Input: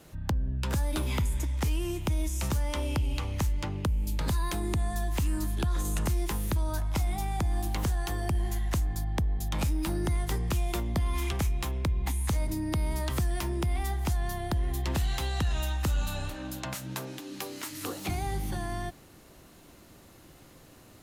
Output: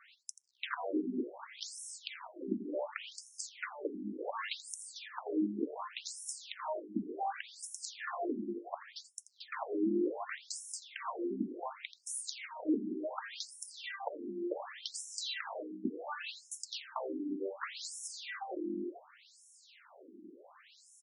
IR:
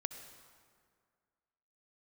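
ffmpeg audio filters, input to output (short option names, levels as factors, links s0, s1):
-af "equalizer=f=5900:w=4.4:g=-6,aecho=1:1:84:0.15,aeval=exprs='0.0501*(abs(mod(val(0)/0.0501+3,4)-2)-1)':c=same,afftfilt=real='re*between(b*sr/1024,270*pow(7700/270,0.5+0.5*sin(2*PI*0.68*pts/sr))/1.41,270*pow(7700/270,0.5+0.5*sin(2*PI*0.68*pts/sr))*1.41)':imag='im*between(b*sr/1024,270*pow(7700/270,0.5+0.5*sin(2*PI*0.68*pts/sr))/1.41,270*pow(7700/270,0.5+0.5*sin(2*PI*0.68*pts/sr))*1.41)':win_size=1024:overlap=0.75,volume=1.88"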